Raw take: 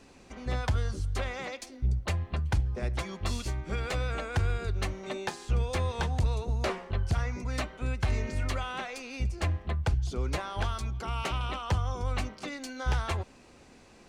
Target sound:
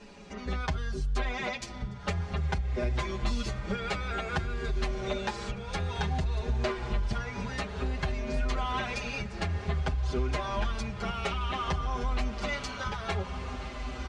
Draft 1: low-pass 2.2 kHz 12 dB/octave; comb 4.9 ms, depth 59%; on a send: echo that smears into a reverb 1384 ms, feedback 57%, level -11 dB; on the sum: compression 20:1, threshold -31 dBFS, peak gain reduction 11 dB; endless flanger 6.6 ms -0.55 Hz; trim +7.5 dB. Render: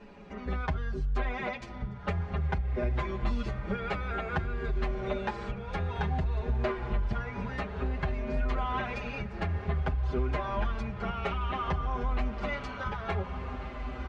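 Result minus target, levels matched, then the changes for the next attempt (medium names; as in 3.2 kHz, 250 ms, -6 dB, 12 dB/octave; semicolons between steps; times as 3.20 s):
8 kHz band -15.0 dB
change: low-pass 5.8 kHz 12 dB/octave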